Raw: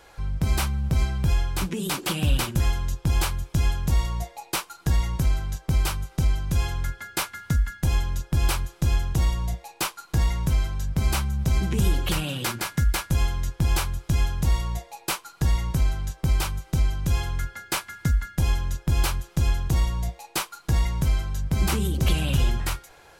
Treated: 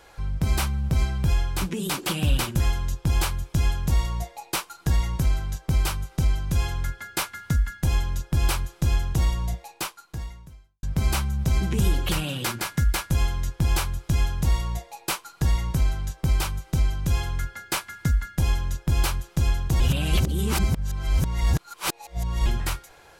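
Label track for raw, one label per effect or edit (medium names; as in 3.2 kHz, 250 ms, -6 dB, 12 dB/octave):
9.610000	10.830000	fade out quadratic
19.800000	22.460000	reverse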